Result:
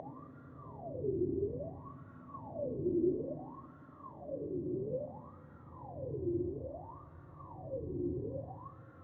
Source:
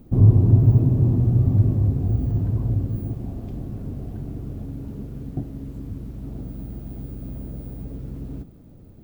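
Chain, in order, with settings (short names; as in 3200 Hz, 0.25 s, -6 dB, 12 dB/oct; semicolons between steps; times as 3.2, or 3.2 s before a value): Paulstretch 41×, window 0.05 s, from 1.64; wah 0.59 Hz 350–1400 Hz, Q 21; ripple EQ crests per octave 1.1, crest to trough 7 dB; gain +10.5 dB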